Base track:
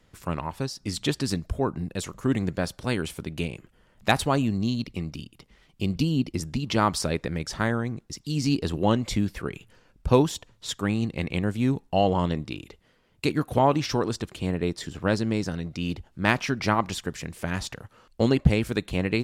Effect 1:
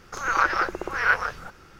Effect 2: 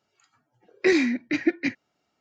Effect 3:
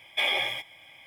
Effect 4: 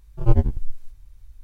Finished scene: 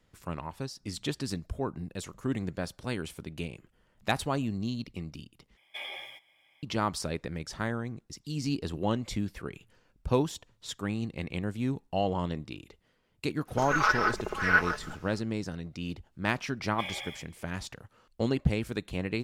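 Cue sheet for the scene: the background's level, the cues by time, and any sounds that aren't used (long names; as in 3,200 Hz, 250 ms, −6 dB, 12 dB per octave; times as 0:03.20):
base track −7 dB
0:05.57: overwrite with 3 −14 dB + high-pass filter 190 Hz 6 dB per octave
0:13.45: mix in 1 −5 dB, fades 0.05 s + comb filter 4.7 ms, depth 70%
0:16.61: mix in 3 −13 dB
not used: 2, 4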